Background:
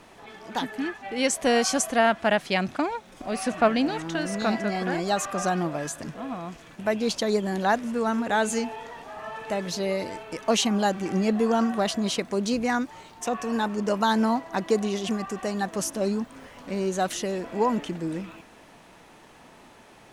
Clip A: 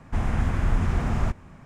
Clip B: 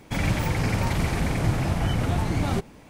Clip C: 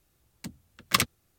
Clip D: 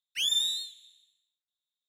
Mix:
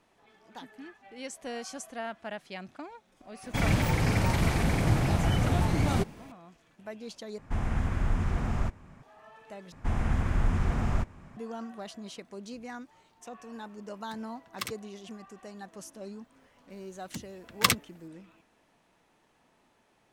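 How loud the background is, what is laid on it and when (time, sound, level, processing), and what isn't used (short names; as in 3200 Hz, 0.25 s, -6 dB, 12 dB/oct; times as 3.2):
background -16.5 dB
3.43 add B -1.5 dB
7.38 replace with A -5 dB
9.72 replace with A -3.5 dB
13.67 add C -13.5 dB
16.7 add C
not used: D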